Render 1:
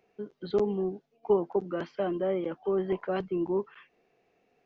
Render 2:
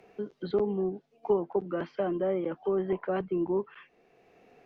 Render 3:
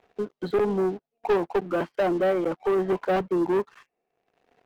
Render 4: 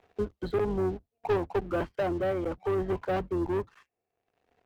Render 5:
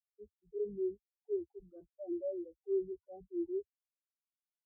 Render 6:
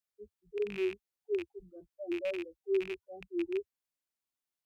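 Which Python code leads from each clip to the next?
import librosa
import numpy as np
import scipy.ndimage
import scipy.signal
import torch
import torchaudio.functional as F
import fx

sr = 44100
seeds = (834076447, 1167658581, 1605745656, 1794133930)

y1 = fx.env_lowpass_down(x, sr, base_hz=2500.0, full_db=-27.0)
y1 = fx.band_squash(y1, sr, depth_pct=40)
y2 = fx.peak_eq(y1, sr, hz=830.0, db=6.0, octaves=1.3)
y2 = fx.leveller(y2, sr, passes=3)
y2 = fx.upward_expand(y2, sr, threshold_db=-36.0, expansion=1.5)
y2 = y2 * 10.0 ** (-2.5 / 20.0)
y3 = fx.octave_divider(y2, sr, octaves=2, level_db=-4.0)
y3 = fx.rider(y3, sr, range_db=4, speed_s=0.5)
y3 = y3 * 10.0 ** (-5.0 / 20.0)
y4 = fx.transient(y3, sr, attack_db=-7, sustain_db=6)
y4 = fx.leveller(y4, sr, passes=2)
y4 = fx.spectral_expand(y4, sr, expansion=4.0)
y4 = y4 * 10.0 ** (-7.0 / 20.0)
y5 = fx.rattle_buzz(y4, sr, strikes_db=-53.0, level_db=-34.0)
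y5 = y5 * 10.0 ** (3.0 / 20.0)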